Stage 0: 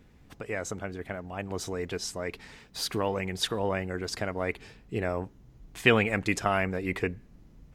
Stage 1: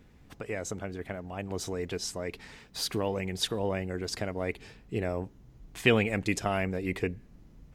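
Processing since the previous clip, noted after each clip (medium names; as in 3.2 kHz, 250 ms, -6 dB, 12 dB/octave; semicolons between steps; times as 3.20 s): dynamic bell 1.3 kHz, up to -7 dB, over -43 dBFS, Q 0.98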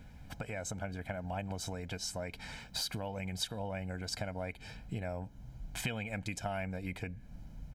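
compression 5:1, threshold -39 dBFS, peak gain reduction 19 dB; comb 1.3 ms, depth 71%; trim +2 dB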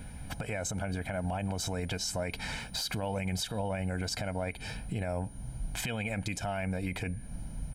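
whistle 9.5 kHz -64 dBFS; peak limiter -33 dBFS, peak gain reduction 11 dB; trim +8.5 dB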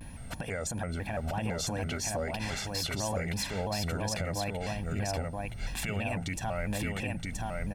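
hum notches 60/120/180 Hz; delay 973 ms -3 dB; vibrato with a chosen wave square 3 Hz, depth 160 cents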